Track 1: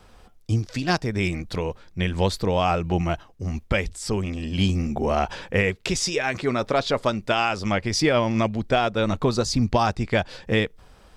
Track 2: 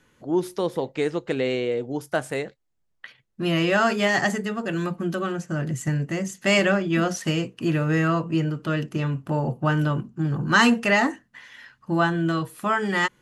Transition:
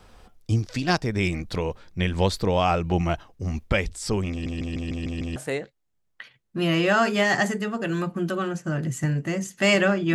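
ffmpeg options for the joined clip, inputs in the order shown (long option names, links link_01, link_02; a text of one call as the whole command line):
ffmpeg -i cue0.wav -i cue1.wav -filter_complex "[0:a]apad=whole_dur=10.14,atrim=end=10.14,asplit=7[link_01][link_02][link_03][link_04][link_05][link_06][link_07];[link_01]atrim=end=4.462[link_08];[link_02]atrim=start=4.308:end=4.462[link_09];[link_03]atrim=start=4.308:end=4.462[link_10];[link_04]atrim=start=4.308:end=4.462[link_11];[link_05]atrim=start=4.308:end=4.462[link_12];[link_06]atrim=start=4.308:end=4.462[link_13];[link_07]atrim=start=4.308:end=4.462[link_14];[1:a]atrim=start=2.198:end=6.98[link_15];[link_08][link_09]acrossfade=duration=0.004:curve1=hsin:curve2=hsin[link_16];[link_16][link_10]acrossfade=duration=0.004:curve1=hsin:curve2=hsin[link_17];[link_17][link_11]acrossfade=duration=0.004:curve1=hsin:curve2=hsin[link_18];[link_18][link_12]acrossfade=duration=0.004:curve1=hsin:curve2=hsin[link_19];[link_19][link_13]acrossfade=duration=0.004:curve1=hsin:curve2=hsin[link_20];[link_20][link_14]acrossfade=duration=0.004:curve1=hsin:curve2=hsin[link_21];[link_21][link_15]acrossfade=duration=0.004:curve1=hsin:curve2=hsin" out.wav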